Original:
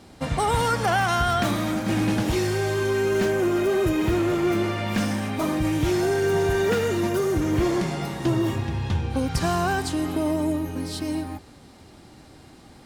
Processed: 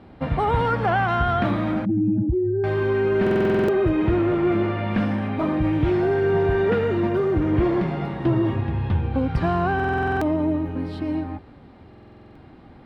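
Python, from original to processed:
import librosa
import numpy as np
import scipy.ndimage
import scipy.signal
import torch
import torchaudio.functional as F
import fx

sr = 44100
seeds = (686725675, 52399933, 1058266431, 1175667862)

y = fx.spec_expand(x, sr, power=2.7, at=(1.85, 2.64))
y = fx.air_absorb(y, sr, metres=460.0)
y = fx.buffer_glitch(y, sr, at_s=(3.22, 9.75, 11.89), block=2048, repeats=9)
y = F.gain(torch.from_numpy(y), 3.0).numpy()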